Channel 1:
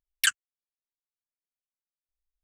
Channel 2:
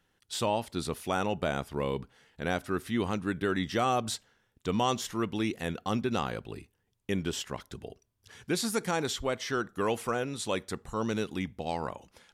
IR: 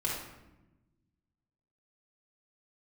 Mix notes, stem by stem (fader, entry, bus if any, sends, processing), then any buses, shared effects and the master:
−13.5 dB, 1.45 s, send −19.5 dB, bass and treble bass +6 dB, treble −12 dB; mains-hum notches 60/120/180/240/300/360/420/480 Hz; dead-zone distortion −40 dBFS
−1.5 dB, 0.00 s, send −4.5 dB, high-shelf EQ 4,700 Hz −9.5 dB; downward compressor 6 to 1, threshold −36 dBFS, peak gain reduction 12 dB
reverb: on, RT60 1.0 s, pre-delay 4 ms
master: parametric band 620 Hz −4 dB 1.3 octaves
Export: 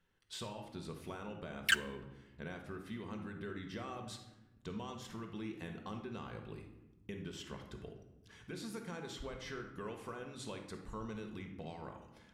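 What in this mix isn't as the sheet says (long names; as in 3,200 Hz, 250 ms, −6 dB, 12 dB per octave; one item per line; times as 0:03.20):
stem 1 −13.5 dB → −2.5 dB
stem 2 −1.5 dB → −9.0 dB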